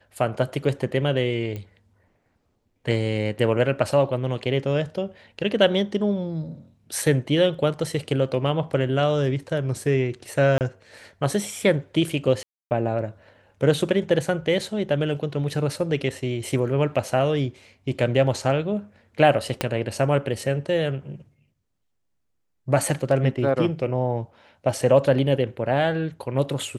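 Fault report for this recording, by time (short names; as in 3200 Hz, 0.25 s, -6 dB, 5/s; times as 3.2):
1.56 pop -21 dBFS
7.02 gap 3 ms
10.58–10.61 gap 28 ms
12.43–12.71 gap 0.279 s
19.61 pop -7 dBFS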